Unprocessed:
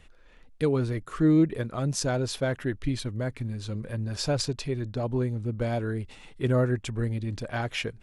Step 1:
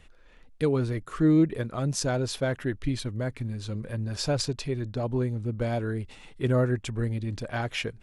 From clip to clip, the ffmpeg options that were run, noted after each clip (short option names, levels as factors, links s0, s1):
-af anull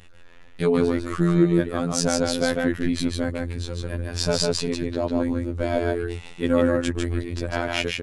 -af "aecho=1:1:150:0.708,afftfilt=real='hypot(re,im)*cos(PI*b)':imag='0':win_size=2048:overlap=0.75,volume=2.66"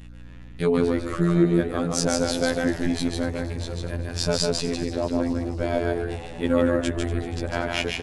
-filter_complex "[0:a]aeval=exprs='val(0)+0.00891*(sin(2*PI*60*n/s)+sin(2*PI*2*60*n/s)/2+sin(2*PI*3*60*n/s)/3+sin(2*PI*4*60*n/s)/4+sin(2*PI*5*60*n/s)/5)':c=same,asplit=7[s0][s1][s2][s3][s4][s5][s6];[s1]adelay=238,afreqshift=77,volume=0.178[s7];[s2]adelay=476,afreqshift=154,volume=0.107[s8];[s3]adelay=714,afreqshift=231,volume=0.0638[s9];[s4]adelay=952,afreqshift=308,volume=0.0385[s10];[s5]adelay=1190,afreqshift=385,volume=0.0232[s11];[s6]adelay=1428,afreqshift=462,volume=0.0138[s12];[s0][s7][s8][s9][s10][s11][s12]amix=inputs=7:normalize=0,volume=0.891"